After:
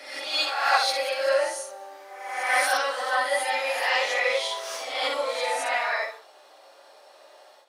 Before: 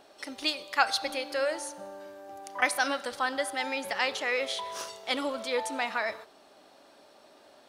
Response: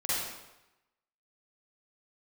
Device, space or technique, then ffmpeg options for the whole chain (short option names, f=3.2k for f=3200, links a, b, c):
ghost voice: -filter_complex "[0:a]areverse[a];[1:a]atrim=start_sample=2205[b];[a][b]afir=irnorm=-1:irlink=0,areverse,highpass=f=430:w=0.5412,highpass=f=430:w=1.3066,volume=-2.5dB"